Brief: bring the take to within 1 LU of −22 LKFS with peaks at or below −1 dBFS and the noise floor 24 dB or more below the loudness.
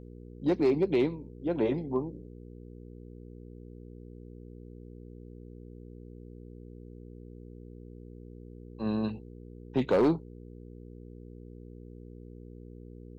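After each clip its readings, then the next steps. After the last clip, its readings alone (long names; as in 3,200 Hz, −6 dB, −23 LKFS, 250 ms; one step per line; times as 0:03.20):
share of clipped samples 0.3%; peaks flattened at −18.5 dBFS; mains hum 60 Hz; hum harmonics up to 480 Hz; level of the hum −45 dBFS; integrated loudness −29.5 LKFS; sample peak −18.5 dBFS; target loudness −22.0 LKFS
→ clipped peaks rebuilt −18.5 dBFS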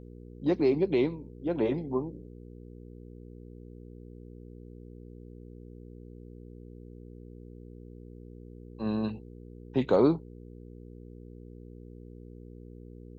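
share of clipped samples 0.0%; mains hum 60 Hz; hum harmonics up to 480 Hz; level of the hum −44 dBFS
→ hum removal 60 Hz, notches 8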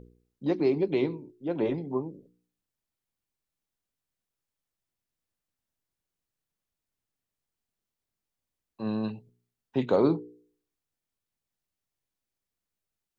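mains hum none found; integrated loudness −29.0 LKFS; sample peak −11.0 dBFS; target loudness −22.0 LKFS
→ level +7 dB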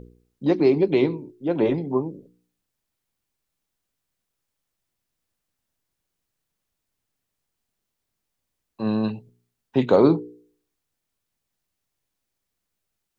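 integrated loudness −22.0 LKFS; sample peak −4.0 dBFS; background noise floor −81 dBFS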